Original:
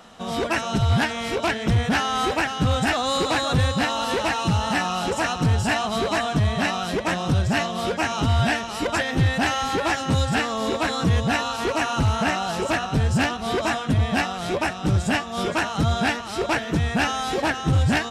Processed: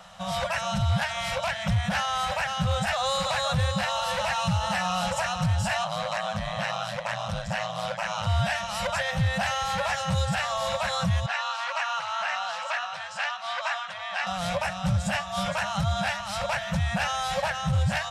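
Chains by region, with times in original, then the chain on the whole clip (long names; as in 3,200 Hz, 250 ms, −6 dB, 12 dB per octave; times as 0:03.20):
0:05.84–0:08.27: high-pass filter 190 Hz + high-shelf EQ 8,700 Hz −9 dB + ring modulation 55 Hz
0:11.26–0:14.27: Chebyshev high-pass filter 1,100 Hz + high-frequency loss of the air 100 metres
whole clip: brick-wall band-stop 210–500 Hz; downward compressor 2 to 1, threshold −23 dBFS; brickwall limiter −17.5 dBFS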